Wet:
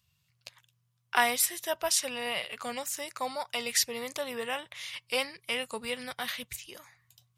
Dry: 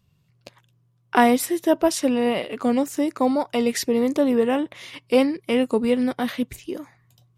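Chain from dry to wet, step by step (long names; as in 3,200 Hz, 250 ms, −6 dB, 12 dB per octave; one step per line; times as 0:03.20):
high-pass filter 70 Hz
guitar amp tone stack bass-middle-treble 10-0-10
level +2.5 dB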